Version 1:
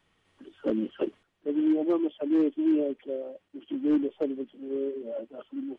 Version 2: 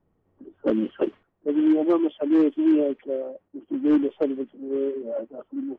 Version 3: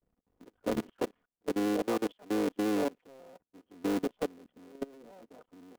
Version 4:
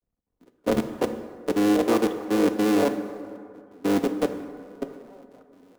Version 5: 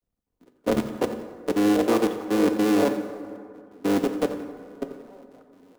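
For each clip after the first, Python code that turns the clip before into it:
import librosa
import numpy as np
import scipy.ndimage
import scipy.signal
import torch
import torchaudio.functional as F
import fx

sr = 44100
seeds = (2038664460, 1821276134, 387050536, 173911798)

y1 = fx.env_lowpass(x, sr, base_hz=580.0, full_db=-22.0)
y1 = fx.dynamic_eq(y1, sr, hz=1200.0, q=0.88, threshold_db=-41.0, ratio=4.0, max_db=4)
y1 = F.gain(torch.from_numpy(y1), 4.5).numpy()
y2 = fx.cycle_switch(y1, sr, every=3, mode='muted')
y2 = y2 + 0.36 * np.pad(y2, (int(4.1 * sr / 1000.0), 0))[:len(y2)]
y2 = fx.level_steps(y2, sr, step_db=24)
y2 = F.gain(torch.from_numpy(y2), -4.5).numpy()
y3 = fx.rev_plate(y2, sr, seeds[0], rt60_s=3.7, hf_ratio=0.4, predelay_ms=0, drr_db=7.0)
y3 = fx.band_widen(y3, sr, depth_pct=40)
y3 = F.gain(torch.from_numpy(y3), 8.0).numpy()
y4 = fx.echo_feedback(y3, sr, ms=88, feedback_pct=38, wet_db=-14.0)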